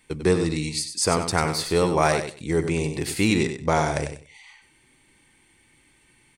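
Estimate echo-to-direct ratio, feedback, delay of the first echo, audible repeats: −8.5 dB, 19%, 96 ms, 2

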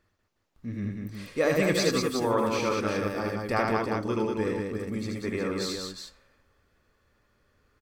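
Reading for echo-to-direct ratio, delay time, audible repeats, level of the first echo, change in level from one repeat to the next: 0.5 dB, 78 ms, 3, −3.5 dB, repeats not evenly spaced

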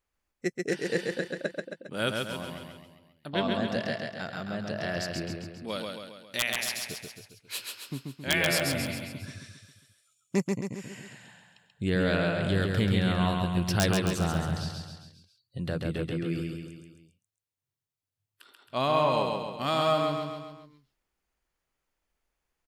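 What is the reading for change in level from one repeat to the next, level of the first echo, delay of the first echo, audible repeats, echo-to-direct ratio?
−5.5 dB, −3.5 dB, 135 ms, 5, −2.0 dB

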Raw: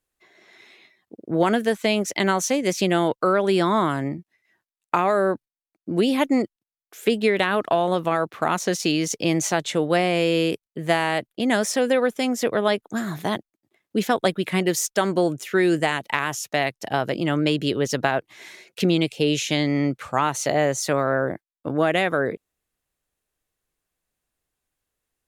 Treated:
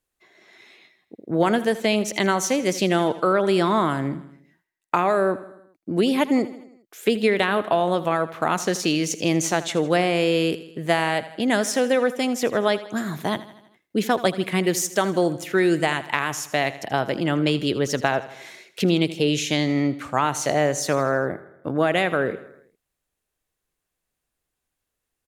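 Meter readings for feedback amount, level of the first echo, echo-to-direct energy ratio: 56%, −16.0 dB, −14.5 dB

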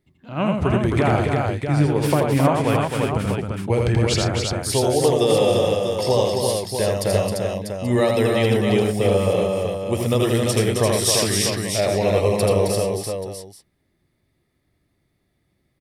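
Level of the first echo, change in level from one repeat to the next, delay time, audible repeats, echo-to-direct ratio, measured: −3.5 dB, repeats not evenly spaced, 82 ms, 6, 1.5 dB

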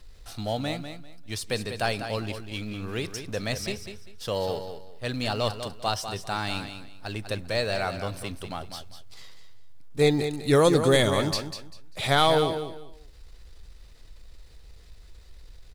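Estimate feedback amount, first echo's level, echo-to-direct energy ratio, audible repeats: 24%, −9.0 dB, −8.5 dB, 3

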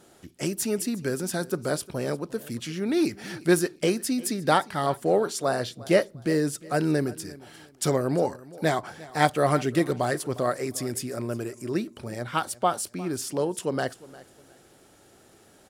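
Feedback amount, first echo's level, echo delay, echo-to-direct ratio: 28%, −20.0 dB, 354 ms, −19.5 dB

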